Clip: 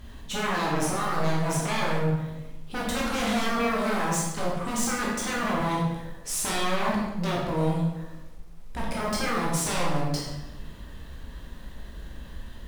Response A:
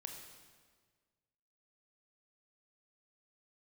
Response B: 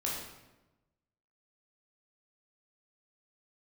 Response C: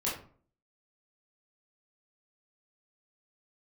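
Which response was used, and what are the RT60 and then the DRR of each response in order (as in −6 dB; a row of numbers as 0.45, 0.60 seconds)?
B; 1.6, 1.0, 0.45 seconds; 2.5, −4.5, −7.0 decibels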